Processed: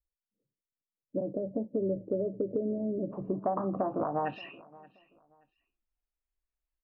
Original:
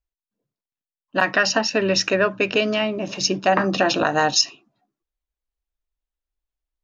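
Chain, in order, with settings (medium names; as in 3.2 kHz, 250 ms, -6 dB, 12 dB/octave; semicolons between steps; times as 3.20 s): Chebyshev low-pass 560 Hz, order 5, from 3.11 s 1.2 kHz, from 4.25 s 2.7 kHz; compression, threshold -23 dBFS, peak gain reduction 9.5 dB; feedback delay 577 ms, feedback 25%, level -22 dB; trim -4 dB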